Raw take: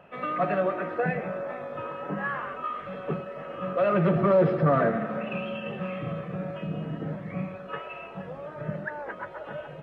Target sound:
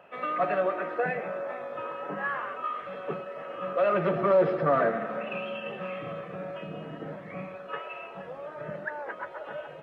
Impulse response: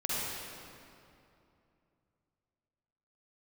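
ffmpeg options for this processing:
-af "bass=frequency=250:gain=-12,treble=frequency=4000:gain=0"

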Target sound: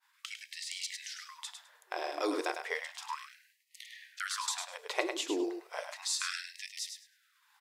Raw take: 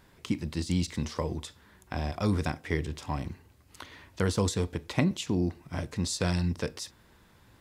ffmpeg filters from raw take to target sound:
ffmpeg -i in.wav -filter_complex "[0:a]agate=range=-33dB:threshold=-53dB:ratio=3:detection=peak,asplit=2[link_01][link_02];[link_02]aecho=0:1:103|206|309:0.447|0.0804|0.0145[link_03];[link_01][link_03]amix=inputs=2:normalize=0,afftfilt=real='re*gte(b*sr/1024,290*pow(1800/290,0.5+0.5*sin(2*PI*0.33*pts/sr)))':imag='im*gte(b*sr/1024,290*pow(1800/290,0.5+0.5*sin(2*PI*0.33*pts/sr)))':win_size=1024:overlap=0.75" out.wav

